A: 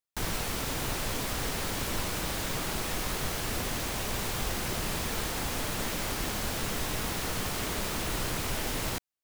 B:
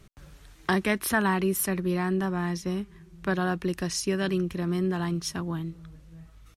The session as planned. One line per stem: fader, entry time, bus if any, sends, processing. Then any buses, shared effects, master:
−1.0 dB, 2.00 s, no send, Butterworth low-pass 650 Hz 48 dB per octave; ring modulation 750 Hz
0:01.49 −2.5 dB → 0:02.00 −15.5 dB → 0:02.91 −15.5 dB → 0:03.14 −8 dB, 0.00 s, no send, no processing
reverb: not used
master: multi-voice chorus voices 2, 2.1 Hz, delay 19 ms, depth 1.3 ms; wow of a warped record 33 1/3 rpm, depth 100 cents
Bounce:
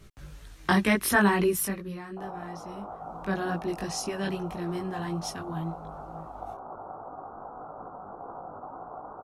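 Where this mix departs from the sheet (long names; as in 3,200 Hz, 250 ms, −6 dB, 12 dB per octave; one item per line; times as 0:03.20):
stem B −2.5 dB → +5.0 dB
master: missing wow of a warped record 33 1/3 rpm, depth 100 cents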